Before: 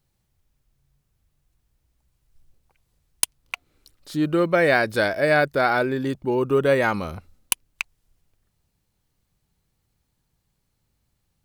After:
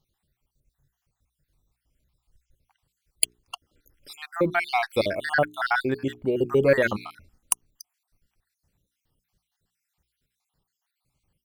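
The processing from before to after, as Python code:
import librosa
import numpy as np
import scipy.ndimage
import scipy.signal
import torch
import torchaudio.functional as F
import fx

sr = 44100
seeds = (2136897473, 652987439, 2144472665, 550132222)

y = fx.spec_dropout(x, sr, seeds[0], share_pct=59)
y = fx.hum_notches(y, sr, base_hz=60, count=7)
y = fx.cheby_harmonics(y, sr, harmonics=(3, 8), levels_db=(-29, -42), full_scale_db=-3.0)
y = F.gain(torch.from_numpy(y), 2.0).numpy()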